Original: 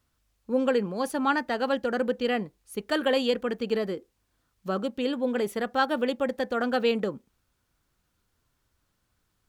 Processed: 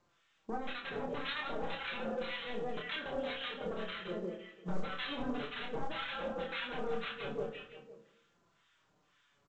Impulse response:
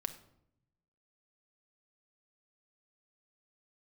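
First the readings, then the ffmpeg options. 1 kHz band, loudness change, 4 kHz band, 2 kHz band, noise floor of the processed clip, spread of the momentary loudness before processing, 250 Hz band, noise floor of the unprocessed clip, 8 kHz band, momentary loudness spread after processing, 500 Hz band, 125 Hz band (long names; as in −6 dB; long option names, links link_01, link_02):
−11.0 dB, −12.0 dB, −6.0 dB, −7.5 dB, −73 dBFS, 8 LU, −14.0 dB, −75 dBFS, below −20 dB, 6 LU, −13.0 dB, −5.5 dB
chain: -filter_complex "[0:a]highpass=frequency=550:poles=1,aecho=1:1:171|342|513|684|855|1026:0.473|0.222|0.105|0.0491|0.0231|0.0109,acompressor=threshold=-35dB:ratio=8,aresample=8000,aeval=exprs='0.0119*(abs(mod(val(0)/0.0119+3,4)-2)-1)':channel_layout=same,aresample=44100,acrossover=split=1100[link_01][link_02];[link_01]aeval=exprs='val(0)*(1-1/2+1/2*cos(2*PI*1.9*n/s))':channel_layout=same[link_03];[link_02]aeval=exprs='val(0)*(1-1/2-1/2*cos(2*PI*1.9*n/s))':channel_layout=same[link_04];[link_03][link_04]amix=inputs=2:normalize=0,flanger=delay=5.7:depth=1.4:regen=29:speed=0.48:shape=triangular,acontrast=40,asplit=2[link_05][link_06];[link_06]adelay=28,volume=-3dB[link_07];[link_05][link_07]amix=inputs=2:normalize=0[link_08];[1:a]atrim=start_sample=2205[link_09];[link_08][link_09]afir=irnorm=-1:irlink=0,volume=6dB" -ar 16000 -c:a pcm_mulaw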